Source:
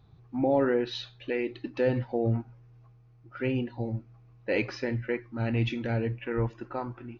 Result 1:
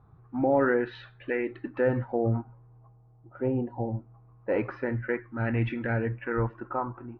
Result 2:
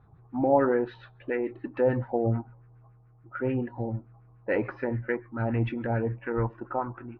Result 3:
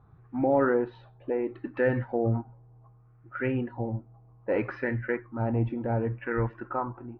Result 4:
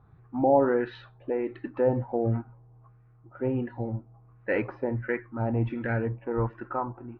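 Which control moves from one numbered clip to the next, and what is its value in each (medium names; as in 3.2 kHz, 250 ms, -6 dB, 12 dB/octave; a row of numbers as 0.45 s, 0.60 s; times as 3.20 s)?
LFO low-pass, rate: 0.22 Hz, 6.9 Hz, 0.66 Hz, 1.4 Hz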